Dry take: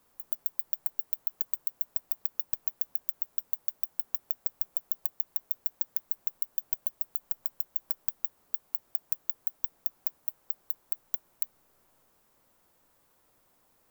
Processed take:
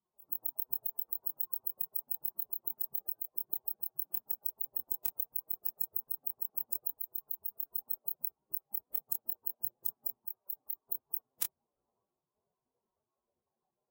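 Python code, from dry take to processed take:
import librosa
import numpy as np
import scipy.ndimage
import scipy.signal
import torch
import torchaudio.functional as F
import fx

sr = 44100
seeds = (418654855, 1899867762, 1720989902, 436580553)

y = fx.bin_expand(x, sr, power=3.0)
y = scipy.signal.sosfilt(scipy.signal.butter(2, 90.0, 'highpass', fs=sr, output='sos'), y)
y = fx.doubler(y, sr, ms=26.0, db=-4)
y = fx.pitch_keep_formants(y, sr, semitones=-5.0)
y = F.gain(torch.from_numpy(y), 1.0).numpy()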